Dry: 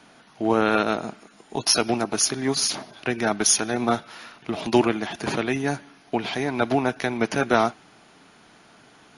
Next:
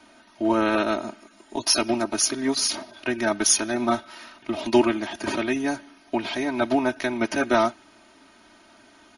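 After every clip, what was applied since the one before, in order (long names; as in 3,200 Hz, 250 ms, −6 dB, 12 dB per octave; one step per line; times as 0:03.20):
comb filter 3.2 ms, depth 98%
level −3.5 dB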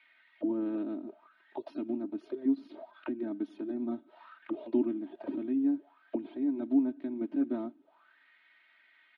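high shelf with overshoot 4,800 Hz −9.5 dB, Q 3
envelope filter 280–2,200 Hz, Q 6.8, down, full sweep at −22.5 dBFS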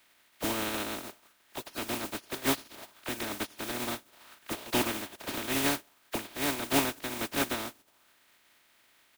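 compressing power law on the bin magnitudes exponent 0.26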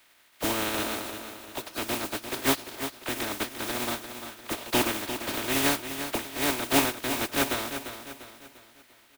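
parametric band 190 Hz −3.5 dB 0.84 octaves
on a send: repeating echo 347 ms, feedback 43%, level −9.5 dB
on the sum: level +4 dB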